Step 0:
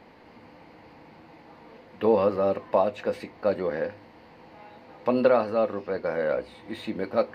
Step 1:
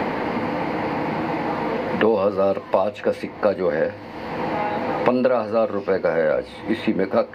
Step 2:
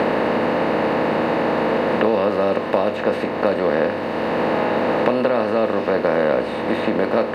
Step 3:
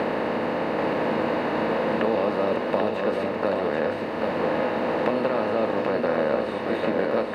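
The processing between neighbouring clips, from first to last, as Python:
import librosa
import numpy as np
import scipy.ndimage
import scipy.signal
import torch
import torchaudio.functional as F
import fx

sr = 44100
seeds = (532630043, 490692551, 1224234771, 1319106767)

y1 = fx.band_squash(x, sr, depth_pct=100)
y1 = y1 * 10.0 ** (5.5 / 20.0)
y2 = fx.bin_compress(y1, sr, power=0.4)
y2 = y2 * 10.0 ** (-4.0 / 20.0)
y3 = y2 + 10.0 ** (-4.0 / 20.0) * np.pad(y2, (int(787 * sr / 1000.0), 0))[:len(y2)]
y3 = y3 * 10.0 ** (-6.5 / 20.0)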